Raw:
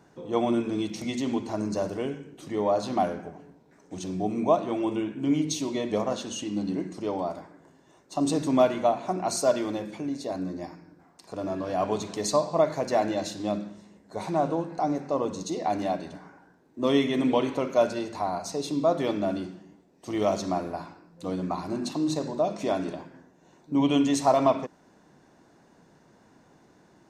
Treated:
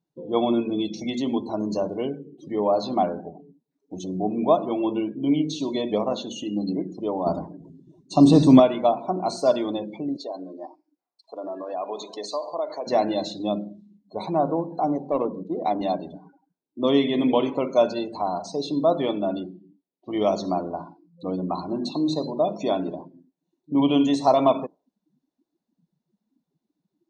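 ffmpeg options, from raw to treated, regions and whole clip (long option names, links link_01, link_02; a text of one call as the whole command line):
ffmpeg -i in.wav -filter_complex "[0:a]asettb=1/sr,asplit=3[link_01][link_02][link_03];[link_01]atrim=end=7.264[link_04];[link_02]atrim=start=7.26:end=8.6,asetpts=PTS-STARTPTS,afade=type=in:duration=0.004:curve=qsin,afade=type=out:start_time=1.336:duration=0.004:curve=qsin,highpass=43,bass=frequency=250:gain=10,treble=frequency=4000:gain=5,acontrast=30[link_05];[link_03]atrim=start=8.596[link_06];[link_04][link_05]acrossfade=duration=0.004:curve1=hsin:curve2=qsin[link_07];[link_07][link_06]acrossfade=duration=0.004:curve1=qsin:curve2=hsin,asettb=1/sr,asplit=3[link_08][link_09][link_10];[link_08]atrim=end=10.164[link_11];[link_09]atrim=start=10.16:end=12.87,asetpts=PTS-STARTPTS,afade=type=in:duration=0.004:curve=qsin,afade=type=out:start_time=2.706:duration=0.004:curve=qsin,highpass=430,acompressor=threshold=-32dB:ratio=2:attack=3.2:release=140:knee=1:detection=peak[link_12];[link_10]atrim=start=12.866[link_13];[link_11][link_12]acrossfade=duration=0.004:curve1=hsin:curve2=qsin[link_14];[link_14][link_13]acrossfade=duration=0.004:curve1=qsin:curve2=hsin,asettb=1/sr,asplit=3[link_15][link_16][link_17];[link_15]atrim=end=15.114[link_18];[link_16]atrim=start=15.11:end=15.81,asetpts=PTS-STARTPTS,afade=type=in:duration=0.004:curve=qsin,afade=type=out:start_time=0.696:duration=0.004:curve=qsin,highpass=130,adynamicsmooth=sensitivity=5.5:basefreq=500[link_19];[link_17]atrim=start=15.806[link_20];[link_18][link_19]acrossfade=duration=0.004:curve1=hsin:curve2=qsin[link_21];[link_21][link_20]acrossfade=duration=0.004:curve1=qsin:curve2=hsin,asettb=1/sr,asplit=3[link_22][link_23][link_24];[link_22]atrim=end=19.064[link_25];[link_23]atrim=start=19.06:end=20.16,asetpts=PTS-STARTPTS,afade=type=in:duration=0.004:curve=qsin,afade=type=out:start_time=1.096:duration=0.004:curve=qsin,lowpass=frequency=4600:width=0.5412,lowpass=frequency=4600:width=1.3066,lowshelf=frequency=370:gain=-2.5[link_26];[link_24]atrim=start=20.156[link_27];[link_25][link_26]acrossfade=duration=0.004:curve1=hsin:curve2=qsin[link_28];[link_28][link_27]acrossfade=duration=0.004:curve1=qsin:curve2=hsin,afftdn=noise_reduction=33:noise_floor=-41,acrossover=split=2500[link_29][link_30];[link_30]acompressor=threshold=-45dB:ratio=4:attack=1:release=60[link_31];[link_29][link_31]amix=inputs=2:normalize=0,equalizer=frequency=100:width_type=o:width=0.67:gain=-9,equalizer=frequency=1600:width_type=o:width=0.67:gain=-7,equalizer=frequency=4000:width_type=o:width=0.67:gain=10,volume=3.5dB" out.wav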